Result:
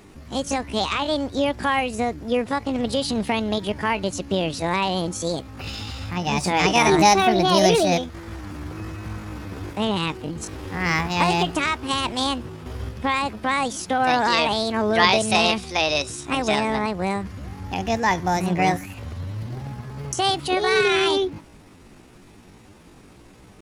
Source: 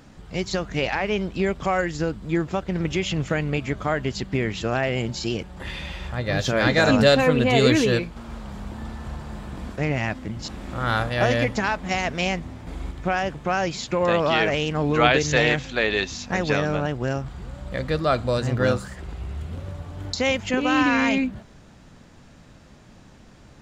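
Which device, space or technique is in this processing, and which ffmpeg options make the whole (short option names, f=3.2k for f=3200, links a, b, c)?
chipmunk voice: -af "asetrate=64194,aresample=44100,atempo=0.686977,volume=1dB"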